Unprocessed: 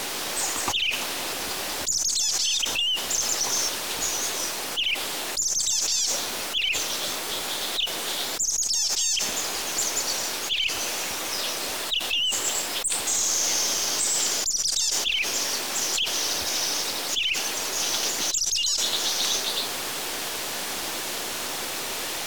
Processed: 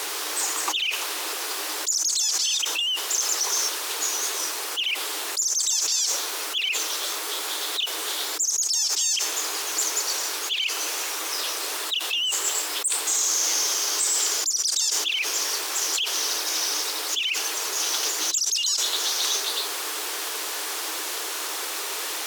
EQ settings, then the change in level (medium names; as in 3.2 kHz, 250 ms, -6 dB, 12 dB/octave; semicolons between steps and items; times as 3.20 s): rippled Chebyshev high-pass 300 Hz, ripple 6 dB; treble shelf 3.7 kHz +7 dB; +1.5 dB